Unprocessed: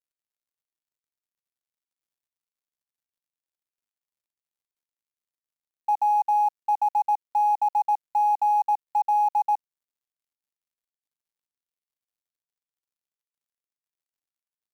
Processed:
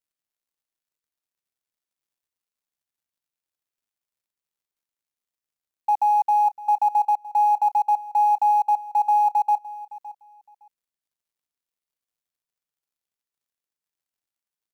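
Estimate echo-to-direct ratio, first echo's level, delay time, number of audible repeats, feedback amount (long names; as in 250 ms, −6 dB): −18.0 dB, −18.0 dB, 563 ms, 2, 19%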